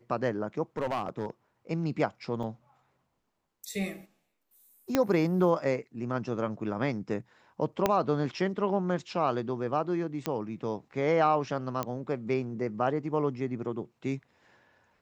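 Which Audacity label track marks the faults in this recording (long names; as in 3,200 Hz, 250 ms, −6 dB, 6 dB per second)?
0.770000	1.300000	clipping −26 dBFS
2.430000	2.430000	drop-out 4 ms
4.950000	4.950000	click −10 dBFS
7.860000	7.860000	click −10 dBFS
10.260000	10.260000	click −15 dBFS
11.830000	11.830000	click −16 dBFS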